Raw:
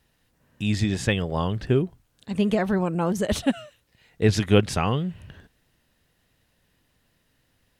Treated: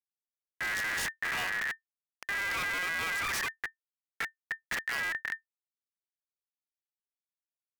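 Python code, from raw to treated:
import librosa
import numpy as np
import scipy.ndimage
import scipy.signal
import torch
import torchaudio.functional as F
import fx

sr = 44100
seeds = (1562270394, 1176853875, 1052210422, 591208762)

y = fx.gate_flip(x, sr, shuts_db=-11.0, range_db=-41)
y = fx.schmitt(y, sr, flips_db=-38.0)
y = y * np.sin(2.0 * np.pi * 1800.0 * np.arange(len(y)) / sr)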